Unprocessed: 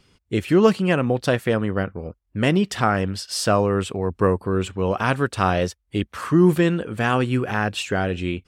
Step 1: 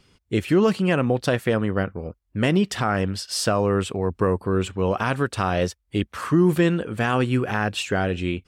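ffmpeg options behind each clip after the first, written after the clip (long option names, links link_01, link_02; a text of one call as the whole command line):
ffmpeg -i in.wav -af "alimiter=limit=-10dB:level=0:latency=1:release=81" out.wav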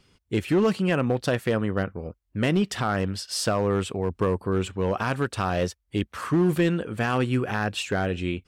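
ffmpeg -i in.wav -af "asoftclip=type=hard:threshold=-13dB,volume=-2.5dB" out.wav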